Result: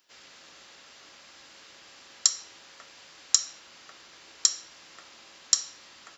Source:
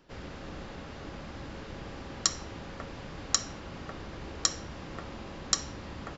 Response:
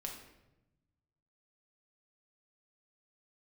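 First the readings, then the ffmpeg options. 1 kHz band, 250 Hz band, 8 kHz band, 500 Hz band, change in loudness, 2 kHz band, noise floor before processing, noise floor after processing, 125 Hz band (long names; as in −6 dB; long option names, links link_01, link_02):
−8.5 dB, below −20 dB, can't be measured, −15.0 dB, +9.5 dB, −4.5 dB, −44 dBFS, −53 dBFS, below −25 dB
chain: -filter_complex "[0:a]aderivative,asplit=2[link_01][link_02];[1:a]atrim=start_sample=2205,asetrate=74970,aresample=44100[link_03];[link_02][link_03]afir=irnorm=-1:irlink=0,volume=0dB[link_04];[link_01][link_04]amix=inputs=2:normalize=0,volume=4.5dB"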